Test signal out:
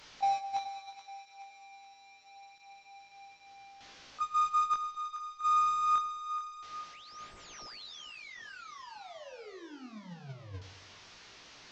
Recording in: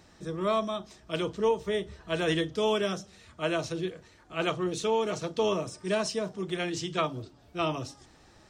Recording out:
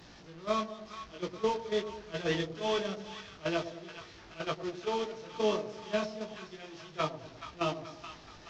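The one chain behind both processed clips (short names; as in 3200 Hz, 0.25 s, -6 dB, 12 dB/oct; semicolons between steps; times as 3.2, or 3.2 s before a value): delta modulation 32 kbps, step -30.5 dBFS; chorus 0.26 Hz, delay 17.5 ms, depth 6.3 ms; gate -30 dBFS, range -14 dB; split-band echo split 870 Hz, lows 0.105 s, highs 0.427 s, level -10.5 dB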